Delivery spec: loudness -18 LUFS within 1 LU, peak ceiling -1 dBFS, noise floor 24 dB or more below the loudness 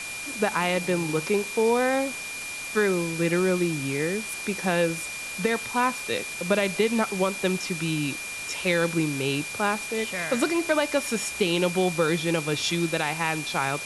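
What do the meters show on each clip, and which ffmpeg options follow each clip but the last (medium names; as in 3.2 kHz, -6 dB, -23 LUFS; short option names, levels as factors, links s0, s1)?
steady tone 2.4 kHz; tone level -34 dBFS; noise floor -35 dBFS; noise floor target -50 dBFS; loudness -25.5 LUFS; peak level -10.0 dBFS; loudness target -18.0 LUFS
-> -af "bandreject=f=2400:w=30"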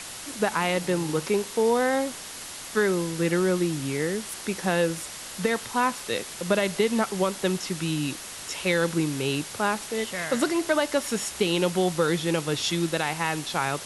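steady tone not found; noise floor -39 dBFS; noise floor target -50 dBFS
-> -af "afftdn=nr=11:nf=-39"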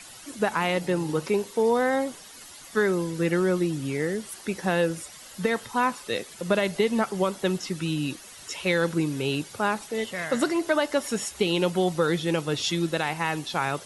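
noise floor -46 dBFS; noise floor target -51 dBFS
-> -af "afftdn=nr=6:nf=-46"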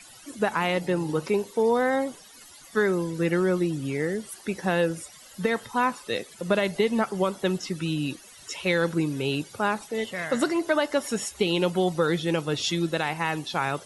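noise floor -49 dBFS; noise floor target -51 dBFS
-> -af "afftdn=nr=6:nf=-49"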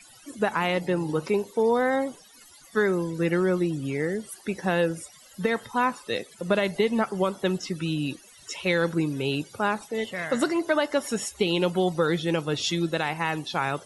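noise floor -52 dBFS; loudness -26.5 LUFS; peak level -11.0 dBFS; loudness target -18.0 LUFS
-> -af "volume=2.66"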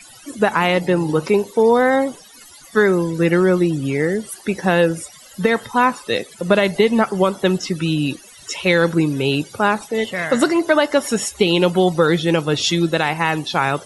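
loudness -18.0 LUFS; peak level -2.5 dBFS; noise floor -44 dBFS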